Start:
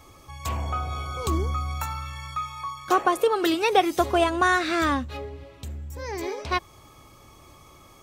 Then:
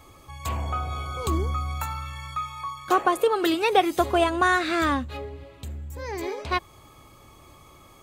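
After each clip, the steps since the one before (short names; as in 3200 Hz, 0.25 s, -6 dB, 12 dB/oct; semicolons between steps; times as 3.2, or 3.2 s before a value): bell 5600 Hz -7.5 dB 0.24 oct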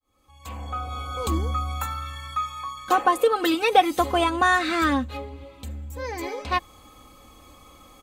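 opening faded in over 1.28 s; comb 3.9 ms, depth 65%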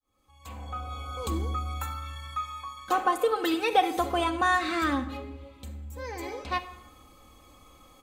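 reverb RT60 0.90 s, pre-delay 32 ms, DRR 10.5 dB; gain -5.5 dB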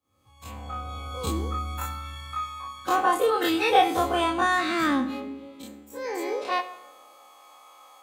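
spectral dilation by 60 ms; high-pass sweep 100 Hz -> 800 Hz, 4.07–7.44; gain -1 dB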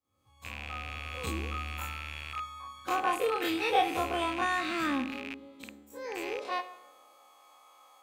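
rattling part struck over -41 dBFS, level -20 dBFS; gain -7 dB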